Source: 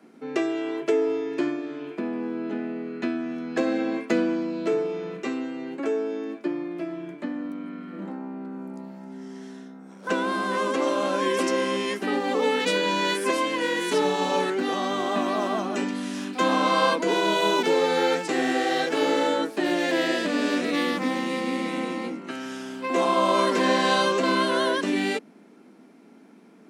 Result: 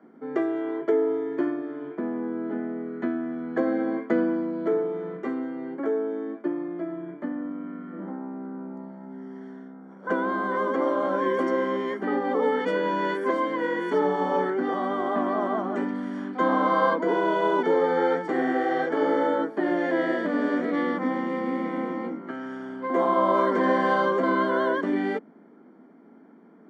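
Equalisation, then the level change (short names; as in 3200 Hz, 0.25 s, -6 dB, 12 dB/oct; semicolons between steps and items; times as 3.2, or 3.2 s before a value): polynomial smoothing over 41 samples; notches 50/100/150/200 Hz; 0.0 dB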